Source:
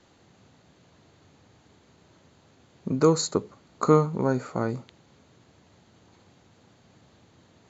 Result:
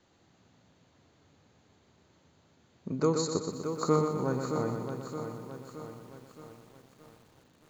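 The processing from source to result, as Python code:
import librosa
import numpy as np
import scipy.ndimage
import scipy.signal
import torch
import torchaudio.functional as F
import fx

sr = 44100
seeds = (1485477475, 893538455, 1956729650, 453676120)

y = fx.echo_feedback(x, sr, ms=122, feedback_pct=55, wet_db=-6.0)
y = fx.echo_crushed(y, sr, ms=620, feedback_pct=55, bits=8, wet_db=-8)
y = F.gain(torch.from_numpy(y), -7.5).numpy()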